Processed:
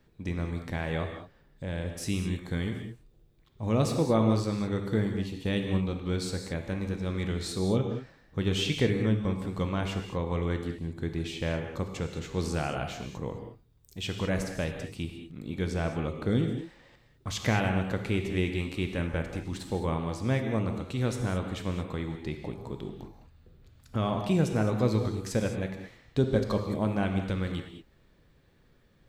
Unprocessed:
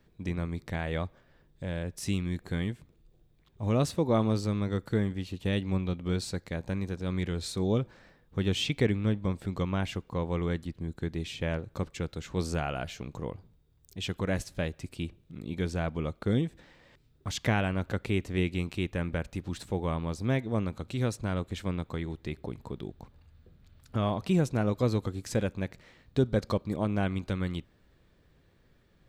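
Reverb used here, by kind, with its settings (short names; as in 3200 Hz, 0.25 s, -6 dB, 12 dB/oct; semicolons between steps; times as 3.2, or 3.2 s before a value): non-linear reverb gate 0.24 s flat, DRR 4 dB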